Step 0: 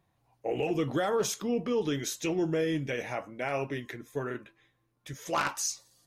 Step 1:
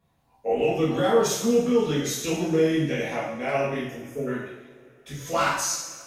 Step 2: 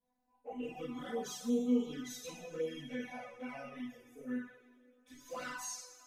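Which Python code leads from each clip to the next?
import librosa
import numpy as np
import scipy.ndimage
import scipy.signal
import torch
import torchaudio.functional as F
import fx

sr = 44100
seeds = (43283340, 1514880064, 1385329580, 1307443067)

y1 = fx.spec_erase(x, sr, start_s=3.83, length_s=0.44, low_hz=680.0, high_hz=4700.0)
y1 = fx.rev_double_slope(y1, sr, seeds[0], early_s=0.74, late_s=3.3, knee_db=-20, drr_db=-9.0)
y1 = y1 * librosa.db_to_amplitude(-3.5)
y2 = fx.comb_fb(y1, sr, f0_hz=250.0, decay_s=0.16, harmonics='all', damping=0.0, mix_pct=100)
y2 = fx.env_flanger(y2, sr, rest_ms=4.2, full_db=-27.5)
y2 = y2 * librosa.db_to_amplitude(-3.0)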